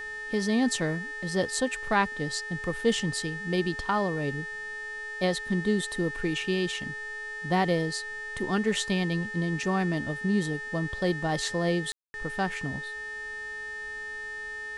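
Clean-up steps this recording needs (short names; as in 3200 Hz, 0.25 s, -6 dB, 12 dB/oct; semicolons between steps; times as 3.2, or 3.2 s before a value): de-hum 424.9 Hz, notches 22; notch 1800 Hz, Q 30; room tone fill 11.92–12.14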